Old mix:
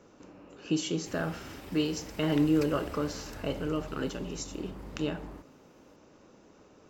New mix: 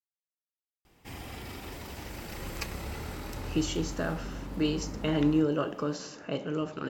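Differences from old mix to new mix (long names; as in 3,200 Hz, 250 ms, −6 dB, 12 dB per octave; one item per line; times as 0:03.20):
speech: entry +2.85 s
background +6.0 dB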